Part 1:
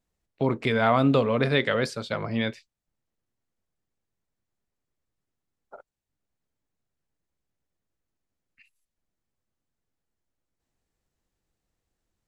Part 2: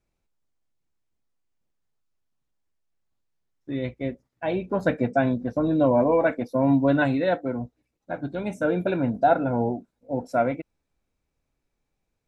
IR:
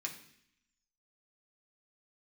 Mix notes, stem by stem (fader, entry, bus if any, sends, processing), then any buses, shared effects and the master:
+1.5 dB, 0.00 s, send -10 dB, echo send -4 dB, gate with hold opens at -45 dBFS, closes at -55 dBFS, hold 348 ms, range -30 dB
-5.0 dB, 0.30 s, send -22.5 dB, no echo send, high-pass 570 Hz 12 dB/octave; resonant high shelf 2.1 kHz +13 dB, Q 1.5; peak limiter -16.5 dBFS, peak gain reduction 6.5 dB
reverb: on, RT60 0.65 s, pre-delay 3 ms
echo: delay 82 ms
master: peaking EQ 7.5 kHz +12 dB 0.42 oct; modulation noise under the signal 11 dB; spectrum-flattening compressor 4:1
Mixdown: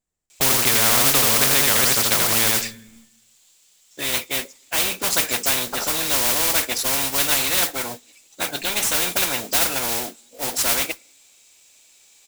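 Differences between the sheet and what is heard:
stem 2: missing peak limiter -16.5 dBFS, peak gain reduction 6.5 dB; reverb return -6.0 dB

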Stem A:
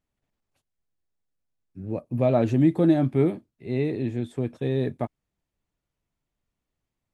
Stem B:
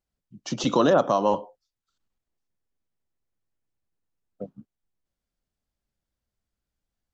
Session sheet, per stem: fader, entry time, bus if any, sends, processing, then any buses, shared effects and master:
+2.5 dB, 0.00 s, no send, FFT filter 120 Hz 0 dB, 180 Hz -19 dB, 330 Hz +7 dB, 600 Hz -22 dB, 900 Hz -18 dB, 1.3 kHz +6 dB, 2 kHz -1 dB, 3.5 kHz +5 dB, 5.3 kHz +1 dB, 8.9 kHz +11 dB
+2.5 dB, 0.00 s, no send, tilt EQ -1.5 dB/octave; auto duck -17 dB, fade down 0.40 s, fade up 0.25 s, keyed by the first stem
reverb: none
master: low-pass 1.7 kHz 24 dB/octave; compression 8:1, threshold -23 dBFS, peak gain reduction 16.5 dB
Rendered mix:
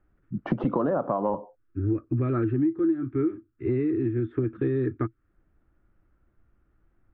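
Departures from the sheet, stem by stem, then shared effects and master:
stem A +2.5 dB -> +13.5 dB; stem B +2.5 dB -> +12.5 dB

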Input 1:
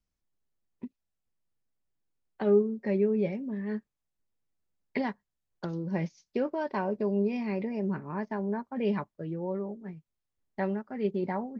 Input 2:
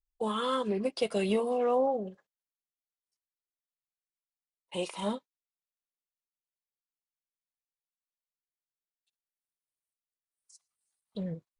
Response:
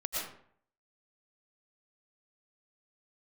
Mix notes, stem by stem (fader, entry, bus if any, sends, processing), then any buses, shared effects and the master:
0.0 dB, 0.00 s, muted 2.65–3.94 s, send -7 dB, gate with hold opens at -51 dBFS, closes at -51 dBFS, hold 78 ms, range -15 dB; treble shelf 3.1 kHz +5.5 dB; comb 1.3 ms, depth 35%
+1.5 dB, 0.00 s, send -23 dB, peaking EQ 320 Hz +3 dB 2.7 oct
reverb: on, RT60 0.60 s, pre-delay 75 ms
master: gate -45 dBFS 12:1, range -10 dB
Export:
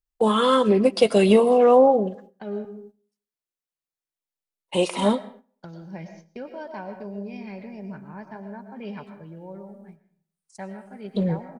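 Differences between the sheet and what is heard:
stem 1 0.0 dB -> -9.0 dB; stem 2 +1.5 dB -> +9.5 dB

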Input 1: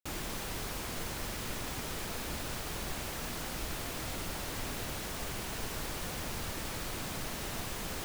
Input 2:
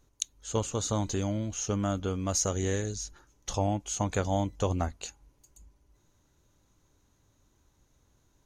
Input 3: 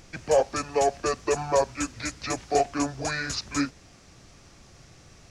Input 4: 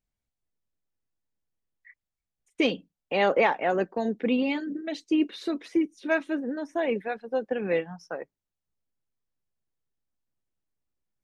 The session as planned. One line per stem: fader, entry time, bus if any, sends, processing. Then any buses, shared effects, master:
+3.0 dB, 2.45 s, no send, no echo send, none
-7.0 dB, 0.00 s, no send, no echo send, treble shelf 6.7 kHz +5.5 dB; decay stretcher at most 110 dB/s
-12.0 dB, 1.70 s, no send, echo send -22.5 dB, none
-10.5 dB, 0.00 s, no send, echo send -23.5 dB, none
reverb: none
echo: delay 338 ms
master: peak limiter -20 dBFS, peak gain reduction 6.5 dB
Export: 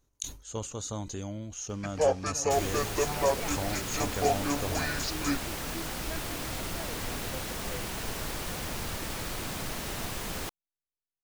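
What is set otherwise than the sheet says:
stem 3 -12.0 dB -> -4.0 dB; stem 4 -10.5 dB -> -18.0 dB; master: missing peak limiter -20 dBFS, peak gain reduction 6.5 dB

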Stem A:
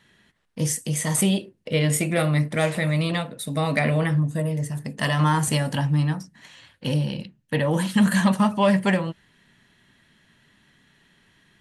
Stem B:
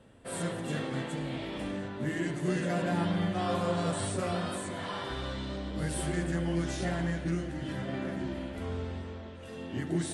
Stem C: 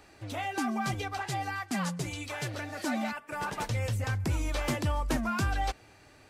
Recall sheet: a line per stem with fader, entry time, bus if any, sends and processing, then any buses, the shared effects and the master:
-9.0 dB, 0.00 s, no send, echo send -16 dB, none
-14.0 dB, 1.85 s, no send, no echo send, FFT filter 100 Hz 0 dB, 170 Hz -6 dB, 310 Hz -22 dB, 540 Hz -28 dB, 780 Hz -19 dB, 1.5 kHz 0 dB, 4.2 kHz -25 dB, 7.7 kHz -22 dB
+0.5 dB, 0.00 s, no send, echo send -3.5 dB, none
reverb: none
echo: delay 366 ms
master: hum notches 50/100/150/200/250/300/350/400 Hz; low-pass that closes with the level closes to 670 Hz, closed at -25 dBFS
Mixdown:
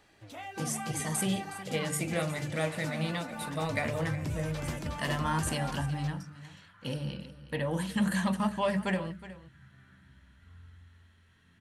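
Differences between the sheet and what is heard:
stem C +0.5 dB -> -8.0 dB; master: missing low-pass that closes with the level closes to 670 Hz, closed at -25 dBFS

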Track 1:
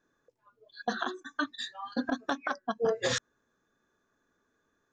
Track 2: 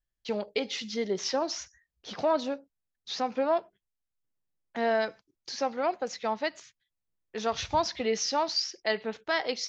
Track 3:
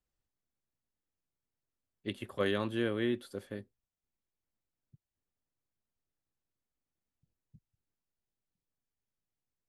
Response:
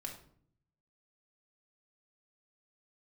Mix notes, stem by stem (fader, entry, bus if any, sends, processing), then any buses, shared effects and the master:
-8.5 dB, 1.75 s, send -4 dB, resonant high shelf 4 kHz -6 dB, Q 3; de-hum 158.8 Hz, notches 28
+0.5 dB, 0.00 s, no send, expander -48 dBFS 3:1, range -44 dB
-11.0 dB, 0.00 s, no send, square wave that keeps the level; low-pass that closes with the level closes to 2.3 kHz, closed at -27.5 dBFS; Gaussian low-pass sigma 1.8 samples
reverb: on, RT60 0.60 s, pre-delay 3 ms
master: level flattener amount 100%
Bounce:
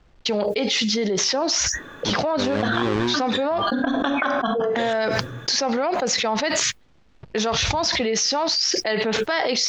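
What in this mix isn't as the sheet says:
stem 1: missing de-hum 158.8 Hz, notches 28; stem 3: missing low-pass that closes with the level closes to 2.3 kHz, closed at -27.5 dBFS

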